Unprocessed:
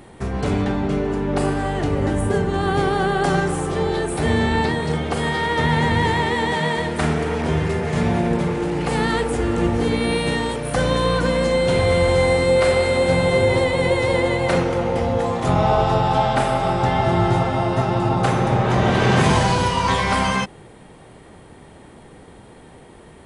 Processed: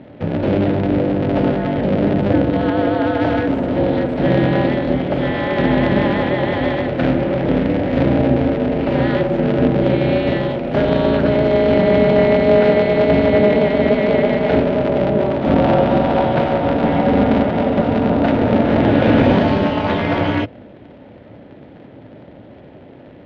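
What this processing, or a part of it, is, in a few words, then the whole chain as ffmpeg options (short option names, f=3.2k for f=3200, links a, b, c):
ring modulator pedal into a guitar cabinet: -filter_complex "[0:a]asettb=1/sr,asplit=3[a][b][c];[a]atrim=end=2.694[d];[b]atrim=start=2.69:end=3.48,asetpts=PTS-STARTPTS,afade=t=in:d=0.004:c=qsin,afade=t=out:st=0.786:d=0.004:c=qsin,highpass=240[e];[c]atrim=start=3.476[f];[d][e]acrossfade=d=0.004:c1=hsin:c2=qsin[g];[g][f]acrossfade=d=0.004:c1=qsin:c2=hsin,aeval=exprs='val(0)*sgn(sin(2*PI*100*n/s))':c=same,highpass=97,equalizer=f=110:t=q:w=4:g=5,equalizer=f=280:t=q:w=4:g=5,equalizer=f=580:t=q:w=4:g=8,equalizer=f=1.1k:t=q:w=4:g=-7,lowpass=f=3.5k:w=0.5412,lowpass=f=3.5k:w=1.3066,lowshelf=f=360:g=8.5,volume=-2dB"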